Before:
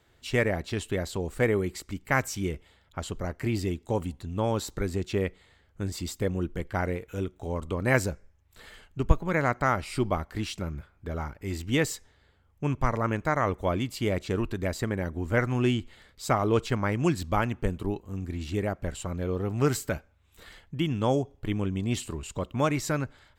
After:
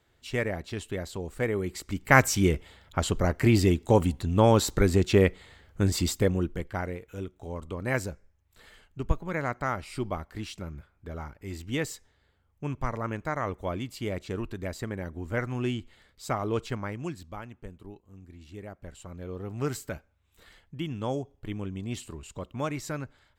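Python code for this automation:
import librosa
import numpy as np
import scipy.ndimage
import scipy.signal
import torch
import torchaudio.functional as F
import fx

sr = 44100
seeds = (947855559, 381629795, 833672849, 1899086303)

y = fx.gain(x, sr, db=fx.line((1.52, -4.0), (2.19, 7.5), (6.02, 7.5), (6.9, -5.0), (16.71, -5.0), (17.39, -15.0), (18.38, -15.0), (19.61, -6.0)))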